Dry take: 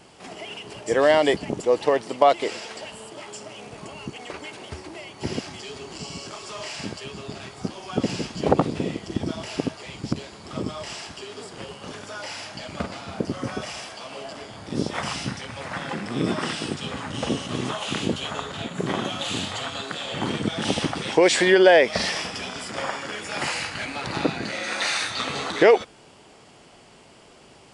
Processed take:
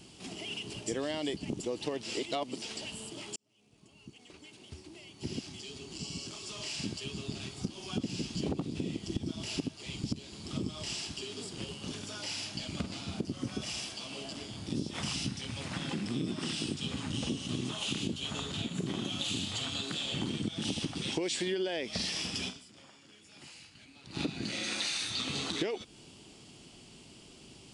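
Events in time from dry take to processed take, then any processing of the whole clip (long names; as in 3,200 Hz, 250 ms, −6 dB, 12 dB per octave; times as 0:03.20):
0:02.03–0:02.62: reverse
0:03.36–0:07.56: fade in
0:22.48–0:24.21: duck −20.5 dB, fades 0.48 s exponential
whole clip: flat-topped bell 970 Hz −11.5 dB 2.5 octaves; downward compressor 6 to 1, threshold −31 dBFS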